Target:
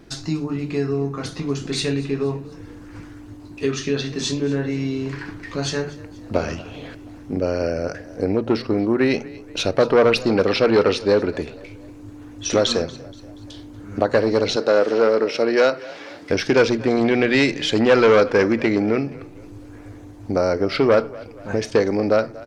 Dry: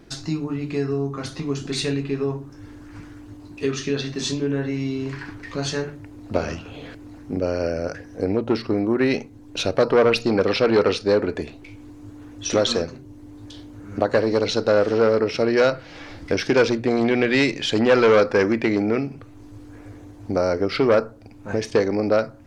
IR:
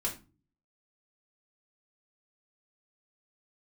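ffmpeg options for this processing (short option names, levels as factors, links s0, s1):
-filter_complex "[0:a]asettb=1/sr,asplit=3[s0][s1][s2];[s0]atrim=end=14.564[s3];[s1]atrim=start=14.56:end=16.3,asetpts=PTS-STARTPTS,afade=t=in:d=0.004:c=qsin,afade=t=out:st=1.736:d=0.004:c=qsin,highpass=250[s4];[s2]atrim=start=16.296[s5];[s3][s4]acrossfade=d=0.004:c1=hsin:c2=qsin[s6];[s6][s5]acrossfade=d=0.004:c1=qsin:c2=hsin,asplit=4[s7][s8][s9][s10];[s8]adelay=238,afreqshift=30,volume=0.0944[s11];[s9]adelay=476,afreqshift=60,volume=0.0442[s12];[s10]adelay=714,afreqshift=90,volume=0.0209[s13];[s7][s11][s12][s13]amix=inputs=4:normalize=0,volume=1.19"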